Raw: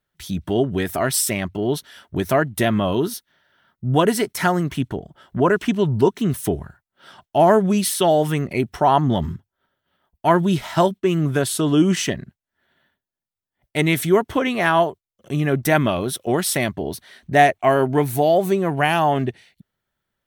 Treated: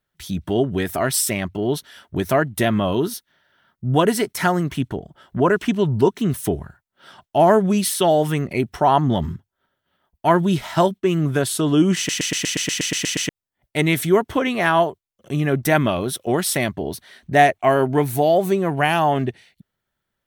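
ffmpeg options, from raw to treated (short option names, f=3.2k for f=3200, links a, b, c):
-filter_complex "[0:a]asplit=12[a][b][c][d][e][f][g][h][i][j][k][l];[a]atrim=end=12.092[m];[b]atrim=start=11.968:end=12.092[n];[c]atrim=start=11.968:end=12.092[o];[d]atrim=start=11.968:end=12.092[p];[e]atrim=start=11.968:end=12.092[q];[f]atrim=start=11.968:end=12.092[r];[g]atrim=start=11.968:end=12.092[s];[h]atrim=start=11.968:end=12.092[t];[i]atrim=start=11.968:end=12.092[u];[j]atrim=start=11.968:end=12.092[v];[k]atrim=start=11.968:end=12.092[w];[l]atrim=start=13.288[x];[m][n]acrossfade=d=0.004:c1=hsin:c2=hsin[y];[y][o]acrossfade=d=0.004:c1=hsin:c2=hsin[z];[z][p]acrossfade=d=0.004:c1=hsin:c2=hsin[aa];[aa][q]acrossfade=d=0.004:c1=hsin:c2=hsin[ab];[ab][r]acrossfade=d=0.004:c1=hsin:c2=hsin[ac];[ac][s]acrossfade=d=0.004:c1=hsin:c2=hsin[ad];[ad][t]acrossfade=d=0.004:c1=hsin:c2=hsin[ae];[ae][u]acrossfade=d=0.004:c1=hsin:c2=hsin[af];[af][v]acrossfade=d=0.004:c1=hsin:c2=hsin[ag];[ag][w]acrossfade=d=0.004:c1=hsin:c2=hsin[ah];[ah][x]acrossfade=d=0.004:c1=hsin:c2=hsin"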